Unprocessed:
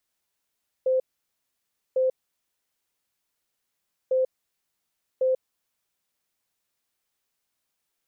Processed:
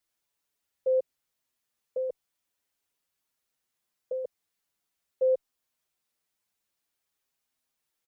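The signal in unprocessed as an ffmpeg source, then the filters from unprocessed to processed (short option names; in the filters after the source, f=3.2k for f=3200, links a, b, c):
-f lavfi -i "aevalsrc='0.112*sin(2*PI*518*t)*clip(min(mod(mod(t,3.25),1.1),0.14-mod(mod(t,3.25),1.1))/0.005,0,1)*lt(mod(t,3.25),2.2)':d=6.5:s=44100"
-filter_complex "[0:a]asplit=2[a][b];[b]adelay=6.3,afreqshift=-0.48[c];[a][c]amix=inputs=2:normalize=1"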